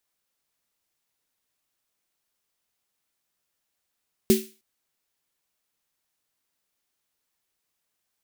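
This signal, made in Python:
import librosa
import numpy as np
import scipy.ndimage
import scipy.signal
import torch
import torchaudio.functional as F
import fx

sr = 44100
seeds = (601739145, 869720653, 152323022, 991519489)

y = fx.drum_snare(sr, seeds[0], length_s=0.31, hz=220.0, second_hz=380.0, noise_db=-9.5, noise_from_hz=2100.0, decay_s=0.27, noise_decay_s=0.37)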